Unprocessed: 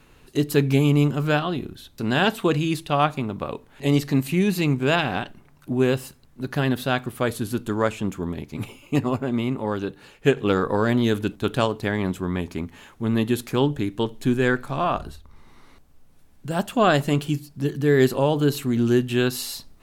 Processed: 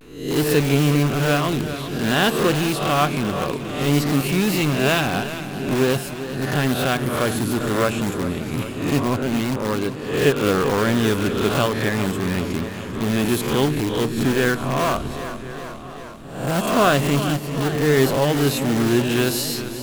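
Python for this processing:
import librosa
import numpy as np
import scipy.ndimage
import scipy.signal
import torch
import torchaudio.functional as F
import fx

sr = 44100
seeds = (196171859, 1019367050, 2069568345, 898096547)

p1 = fx.spec_swells(x, sr, rise_s=0.63)
p2 = fx.notch(p1, sr, hz=880.0, q=12.0)
p3 = p2 + fx.echo_single(p2, sr, ms=1023, db=-21.5, dry=0)
p4 = fx.vibrato(p3, sr, rate_hz=0.52, depth_cents=53.0)
p5 = (np.mod(10.0 ** (18.5 / 20.0) * p4 + 1.0, 2.0) - 1.0) / 10.0 ** (18.5 / 20.0)
p6 = p4 + (p5 * 10.0 ** (-6.5 / 20.0))
y = fx.echo_warbled(p6, sr, ms=397, feedback_pct=67, rate_hz=2.8, cents=52, wet_db=-12.0)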